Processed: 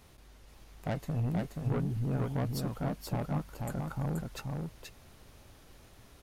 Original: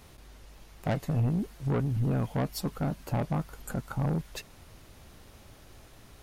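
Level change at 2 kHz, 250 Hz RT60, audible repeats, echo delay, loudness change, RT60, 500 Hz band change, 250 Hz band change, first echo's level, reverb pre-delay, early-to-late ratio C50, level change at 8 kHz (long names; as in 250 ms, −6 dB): −3.5 dB, no reverb audible, 1, 479 ms, −3.5 dB, no reverb audible, −3.5 dB, −3.5 dB, −3.5 dB, no reverb audible, no reverb audible, −3.5 dB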